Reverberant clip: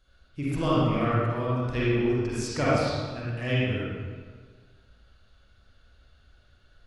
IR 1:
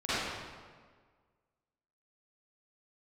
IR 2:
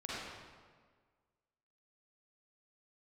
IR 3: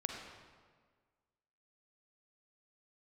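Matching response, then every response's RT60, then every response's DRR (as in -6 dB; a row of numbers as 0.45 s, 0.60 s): 2; 1.6 s, 1.6 s, 1.6 s; -16.0 dB, -8.5 dB, 1.5 dB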